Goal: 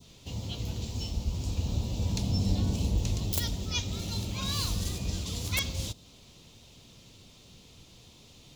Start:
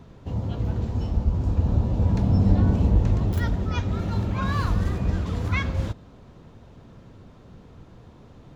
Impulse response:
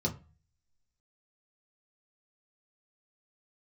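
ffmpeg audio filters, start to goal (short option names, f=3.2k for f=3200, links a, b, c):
-af "aexciter=amount=10.3:drive=5.1:freq=2.4k,aeval=exprs='(mod(1.78*val(0)+1,2)-1)/1.78':c=same,adynamicequalizer=threshold=0.0112:dfrequency=2100:dqfactor=0.77:tfrequency=2100:tqfactor=0.77:attack=5:release=100:ratio=0.375:range=3:mode=cutabove:tftype=bell,volume=-9dB"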